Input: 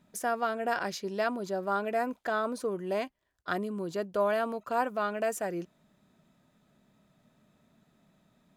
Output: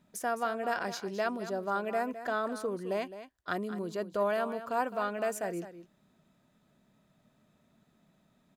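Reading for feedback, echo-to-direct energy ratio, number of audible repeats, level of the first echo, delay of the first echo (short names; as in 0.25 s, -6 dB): no steady repeat, -12.5 dB, 1, -12.5 dB, 0.211 s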